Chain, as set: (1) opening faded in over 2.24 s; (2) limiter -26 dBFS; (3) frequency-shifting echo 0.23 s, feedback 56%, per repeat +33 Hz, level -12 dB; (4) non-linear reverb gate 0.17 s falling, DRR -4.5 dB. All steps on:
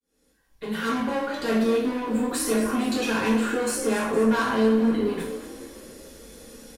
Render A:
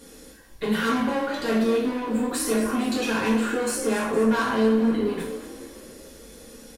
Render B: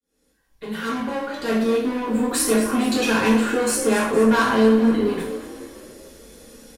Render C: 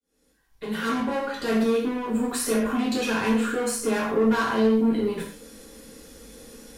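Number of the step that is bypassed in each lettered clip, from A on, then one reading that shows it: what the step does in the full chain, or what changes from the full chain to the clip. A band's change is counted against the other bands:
1, momentary loudness spread change -4 LU; 2, mean gain reduction 2.5 dB; 3, momentary loudness spread change -10 LU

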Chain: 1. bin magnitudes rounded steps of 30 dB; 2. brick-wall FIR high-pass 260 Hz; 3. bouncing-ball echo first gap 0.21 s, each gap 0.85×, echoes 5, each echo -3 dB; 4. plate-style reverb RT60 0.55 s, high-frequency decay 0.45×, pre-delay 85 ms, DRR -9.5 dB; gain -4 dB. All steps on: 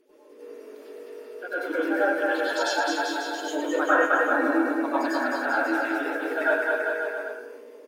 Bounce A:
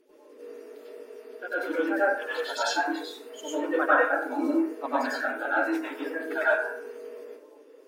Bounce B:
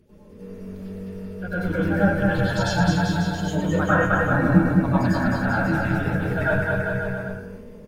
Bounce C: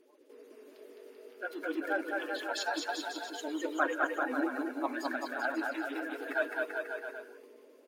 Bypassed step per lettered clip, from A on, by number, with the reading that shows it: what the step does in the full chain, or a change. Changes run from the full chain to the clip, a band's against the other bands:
3, echo-to-direct 12.5 dB to 9.5 dB; 2, 250 Hz band +7.0 dB; 4, echo-to-direct 12.5 dB to 0.0 dB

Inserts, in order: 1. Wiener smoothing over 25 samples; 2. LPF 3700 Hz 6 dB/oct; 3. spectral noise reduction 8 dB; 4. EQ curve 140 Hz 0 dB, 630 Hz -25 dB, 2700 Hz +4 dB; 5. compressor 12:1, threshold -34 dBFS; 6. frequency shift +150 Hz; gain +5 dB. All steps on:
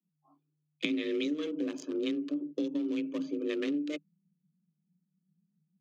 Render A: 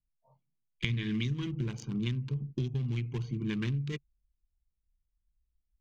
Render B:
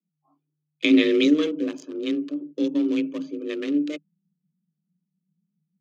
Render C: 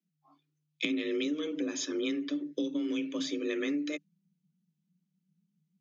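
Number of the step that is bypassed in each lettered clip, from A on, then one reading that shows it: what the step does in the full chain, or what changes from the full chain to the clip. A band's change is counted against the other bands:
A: 6, 125 Hz band +27.0 dB; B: 5, mean gain reduction 6.5 dB; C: 1, 4 kHz band +3.5 dB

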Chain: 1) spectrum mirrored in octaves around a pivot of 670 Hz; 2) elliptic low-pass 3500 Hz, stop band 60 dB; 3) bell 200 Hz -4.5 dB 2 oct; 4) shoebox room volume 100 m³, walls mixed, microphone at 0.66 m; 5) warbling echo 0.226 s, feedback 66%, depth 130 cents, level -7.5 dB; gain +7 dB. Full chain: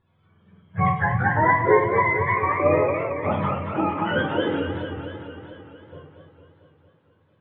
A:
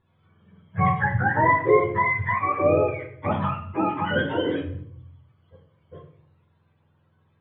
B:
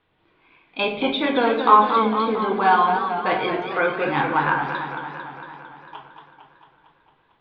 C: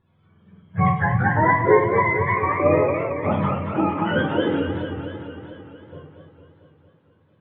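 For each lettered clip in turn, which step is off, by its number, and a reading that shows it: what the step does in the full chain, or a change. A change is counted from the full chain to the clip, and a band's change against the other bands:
5, momentary loudness spread change -5 LU; 1, 125 Hz band -11.0 dB; 3, loudness change +1.0 LU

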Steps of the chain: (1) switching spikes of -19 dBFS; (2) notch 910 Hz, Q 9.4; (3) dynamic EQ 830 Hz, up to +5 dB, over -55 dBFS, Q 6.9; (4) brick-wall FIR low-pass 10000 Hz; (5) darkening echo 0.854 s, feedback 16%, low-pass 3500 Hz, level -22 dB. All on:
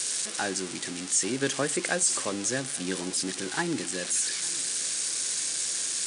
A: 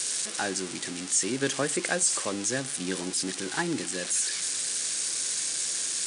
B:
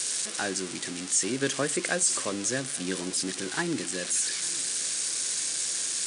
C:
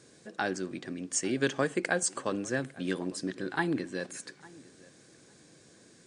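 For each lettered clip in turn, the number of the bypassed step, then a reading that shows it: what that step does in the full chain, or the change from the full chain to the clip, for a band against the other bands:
5, echo-to-direct -23.0 dB to none; 3, 1 kHz band -1.5 dB; 1, crest factor change +4.5 dB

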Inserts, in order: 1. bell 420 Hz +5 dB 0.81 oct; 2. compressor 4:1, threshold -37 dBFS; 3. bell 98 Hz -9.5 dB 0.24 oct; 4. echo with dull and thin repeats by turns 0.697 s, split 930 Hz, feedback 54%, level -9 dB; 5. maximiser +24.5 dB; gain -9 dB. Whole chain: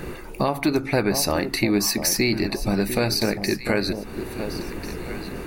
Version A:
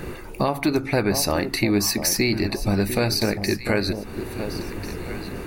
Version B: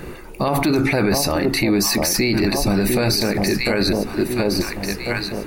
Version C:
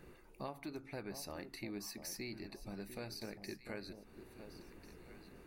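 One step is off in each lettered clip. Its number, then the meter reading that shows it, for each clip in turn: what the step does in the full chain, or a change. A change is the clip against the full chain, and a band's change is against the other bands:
3, 125 Hz band +2.5 dB; 2, mean gain reduction 10.0 dB; 5, crest factor change +4.0 dB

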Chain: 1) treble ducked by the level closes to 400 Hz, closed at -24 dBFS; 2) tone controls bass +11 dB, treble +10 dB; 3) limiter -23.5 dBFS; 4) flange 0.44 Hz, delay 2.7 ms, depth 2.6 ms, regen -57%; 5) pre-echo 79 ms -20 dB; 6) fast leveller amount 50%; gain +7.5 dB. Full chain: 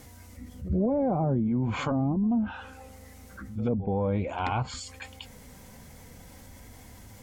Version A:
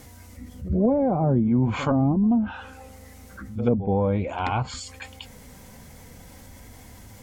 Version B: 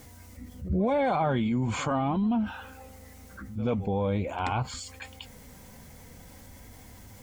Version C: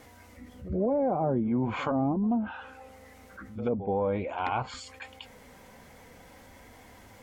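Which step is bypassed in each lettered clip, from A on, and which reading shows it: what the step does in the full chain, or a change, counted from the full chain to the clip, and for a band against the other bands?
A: 3, mean gain reduction 3.0 dB; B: 1, 125 Hz band -3.5 dB; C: 2, 8 kHz band -5.5 dB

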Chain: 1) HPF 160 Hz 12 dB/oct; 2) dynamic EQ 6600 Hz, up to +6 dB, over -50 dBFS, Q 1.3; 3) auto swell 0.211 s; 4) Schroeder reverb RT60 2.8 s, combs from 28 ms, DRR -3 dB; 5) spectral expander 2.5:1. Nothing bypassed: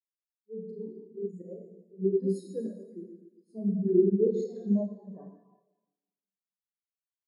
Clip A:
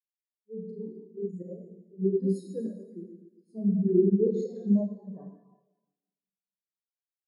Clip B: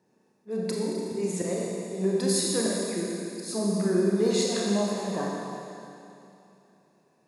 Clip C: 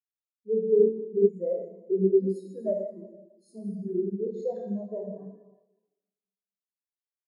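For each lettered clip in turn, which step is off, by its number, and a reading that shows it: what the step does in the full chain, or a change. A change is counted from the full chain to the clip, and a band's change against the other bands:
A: 1, loudness change +1.5 LU; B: 5, crest factor change -3.5 dB; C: 3, momentary loudness spread change -5 LU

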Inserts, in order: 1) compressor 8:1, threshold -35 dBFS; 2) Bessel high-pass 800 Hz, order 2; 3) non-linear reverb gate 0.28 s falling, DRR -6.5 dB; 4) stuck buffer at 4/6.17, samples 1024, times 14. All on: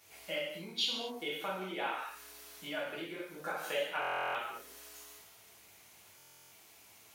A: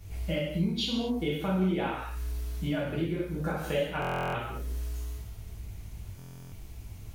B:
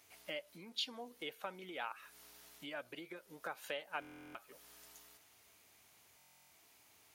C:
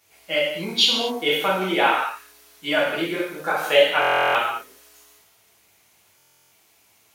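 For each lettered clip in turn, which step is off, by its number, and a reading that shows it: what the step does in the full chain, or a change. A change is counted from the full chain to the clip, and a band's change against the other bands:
2, 125 Hz band +23.0 dB; 3, crest factor change +2.5 dB; 1, momentary loudness spread change -13 LU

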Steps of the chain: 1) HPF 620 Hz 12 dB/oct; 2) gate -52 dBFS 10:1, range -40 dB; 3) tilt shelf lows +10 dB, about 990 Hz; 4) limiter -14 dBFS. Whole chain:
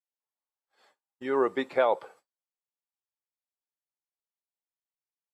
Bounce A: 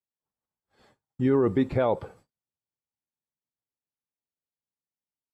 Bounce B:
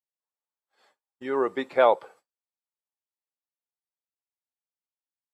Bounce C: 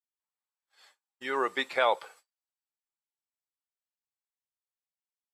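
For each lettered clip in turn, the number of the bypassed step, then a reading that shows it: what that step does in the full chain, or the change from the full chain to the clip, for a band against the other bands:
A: 1, 250 Hz band +13.5 dB; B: 4, crest factor change +4.0 dB; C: 3, crest factor change +2.5 dB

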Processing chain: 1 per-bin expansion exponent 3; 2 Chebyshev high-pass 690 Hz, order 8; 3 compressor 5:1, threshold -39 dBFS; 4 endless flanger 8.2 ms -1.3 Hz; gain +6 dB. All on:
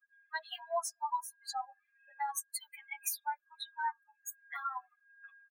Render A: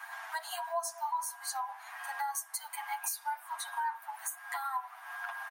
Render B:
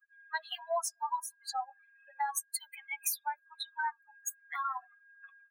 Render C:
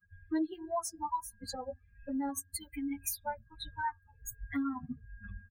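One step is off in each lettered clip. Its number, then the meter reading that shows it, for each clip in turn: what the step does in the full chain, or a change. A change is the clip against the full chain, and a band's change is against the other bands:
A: 1, momentary loudness spread change -5 LU; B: 4, loudness change +2.5 LU; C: 2, 500 Hz band +5.0 dB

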